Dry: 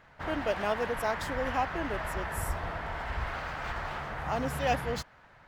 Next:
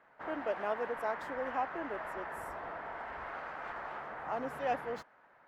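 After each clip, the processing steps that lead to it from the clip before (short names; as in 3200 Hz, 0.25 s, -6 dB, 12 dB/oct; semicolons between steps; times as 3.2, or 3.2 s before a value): three-band isolator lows -21 dB, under 230 Hz, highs -14 dB, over 2100 Hz; gain -4 dB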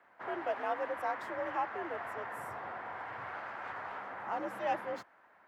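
frequency shift +57 Hz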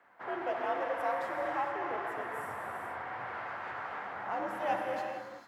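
non-linear reverb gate 0.48 s flat, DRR 1 dB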